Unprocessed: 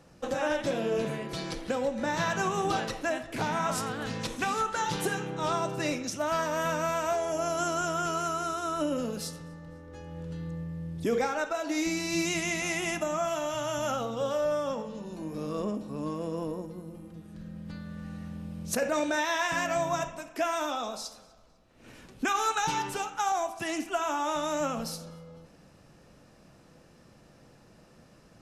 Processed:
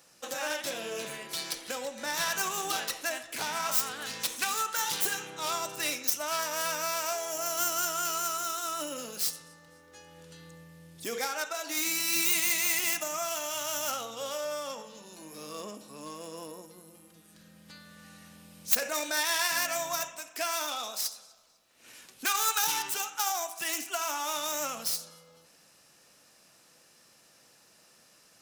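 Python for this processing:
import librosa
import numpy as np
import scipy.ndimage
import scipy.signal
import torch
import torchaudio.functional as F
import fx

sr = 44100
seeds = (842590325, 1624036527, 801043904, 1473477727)

y = fx.tracing_dist(x, sr, depth_ms=0.15)
y = fx.tilt_eq(y, sr, slope=4.5)
y = y * 10.0 ** (-4.0 / 20.0)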